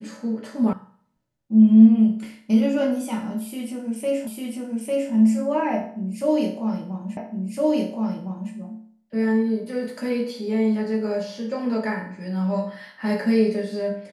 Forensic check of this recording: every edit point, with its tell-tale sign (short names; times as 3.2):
0.73 sound cut off
4.27 repeat of the last 0.85 s
7.17 repeat of the last 1.36 s